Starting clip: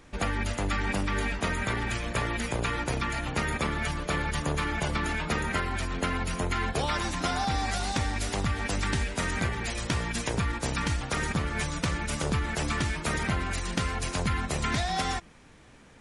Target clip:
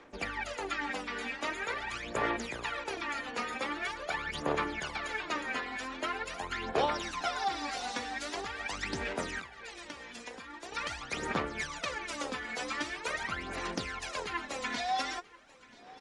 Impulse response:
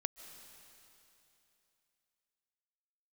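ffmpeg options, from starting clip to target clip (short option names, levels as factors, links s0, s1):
-filter_complex "[0:a]aphaser=in_gain=1:out_gain=1:delay=4.1:decay=0.7:speed=0.44:type=sinusoidal,asettb=1/sr,asplit=3[s0][s1][s2];[s0]atrim=end=5.254[s3];[s1]atrim=start=5.25:end=5.72,asetpts=PTS-STARTPTS,afade=t=in:d=0.004:c=qsin,afade=t=out:st=0.466:d=0.004:c=qsin,lowpass=9300[s4];[s2]atrim=start=5.716[s5];[s3][s4]acrossfade=d=0.004:c1=hsin:c2=qsin[s6];[s6][s5]acrossfade=d=0.004:c1=qsin:c2=hsin,asplit=3[s7][s8][s9];[s7]afade=t=out:st=9.4:d=0.02[s10];[s8]acompressor=threshold=0.02:ratio=4,afade=t=in:st=9.4:d=0.02,afade=t=out:st=10.71:d=0.02[s11];[s9]afade=t=in:st=10.71:d=0.02[s12];[s10][s11][s12]amix=inputs=3:normalize=0,acrossover=split=280 7300:gain=0.1 1 0.158[s13][s14][s15];[s13][s14][s15]amix=inputs=3:normalize=0,aecho=1:1:985:0.0794,volume=0.473"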